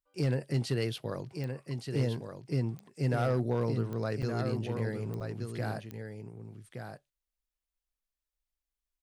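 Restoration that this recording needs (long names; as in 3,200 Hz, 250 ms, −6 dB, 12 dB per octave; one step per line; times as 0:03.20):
clipped peaks rebuilt −21 dBFS
click removal
repair the gap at 0:04.22/0:05.20, 6.7 ms
echo removal 1,170 ms −7 dB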